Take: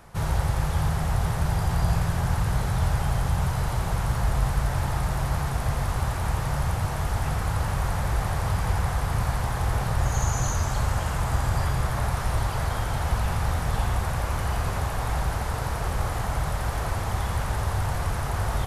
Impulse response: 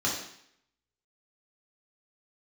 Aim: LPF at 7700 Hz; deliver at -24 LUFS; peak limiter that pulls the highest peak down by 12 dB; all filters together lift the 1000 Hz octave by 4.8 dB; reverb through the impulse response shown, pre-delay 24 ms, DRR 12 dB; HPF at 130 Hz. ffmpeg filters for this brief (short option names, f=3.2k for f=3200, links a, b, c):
-filter_complex "[0:a]highpass=130,lowpass=7.7k,equalizer=f=1k:t=o:g=6,alimiter=level_in=3dB:limit=-24dB:level=0:latency=1,volume=-3dB,asplit=2[a][b];[1:a]atrim=start_sample=2205,adelay=24[c];[b][c]afir=irnorm=-1:irlink=0,volume=-21.5dB[d];[a][d]amix=inputs=2:normalize=0,volume=11dB"